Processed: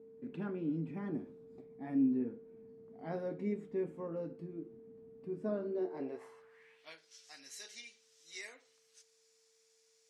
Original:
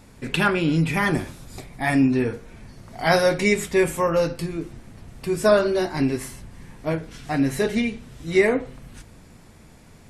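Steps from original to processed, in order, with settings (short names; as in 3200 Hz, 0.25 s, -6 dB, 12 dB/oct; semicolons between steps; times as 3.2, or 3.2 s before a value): low shelf 160 Hz -11.5 dB; whine 450 Hz -36 dBFS; band-pass sweep 240 Hz -> 5800 Hz, 5.69–7.1; gain -7 dB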